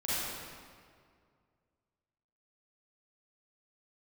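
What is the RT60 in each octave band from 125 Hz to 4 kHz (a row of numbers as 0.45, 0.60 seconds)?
2.5, 2.3, 2.2, 2.0, 1.7, 1.4 seconds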